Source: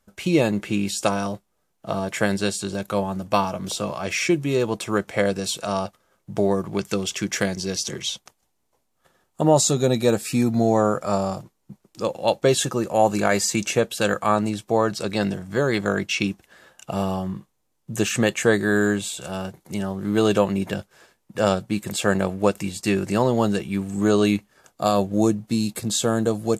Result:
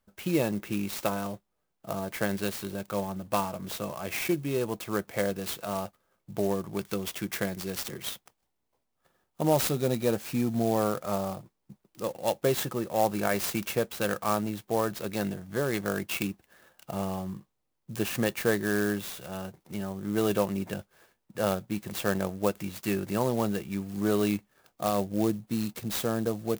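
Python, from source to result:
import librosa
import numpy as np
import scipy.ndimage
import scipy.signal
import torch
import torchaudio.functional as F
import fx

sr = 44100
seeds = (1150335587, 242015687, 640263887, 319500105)

y = fx.clock_jitter(x, sr, seeds[0], jitter_ms=0.042)
y = y * librosa.db_to_amplitude(-7.5)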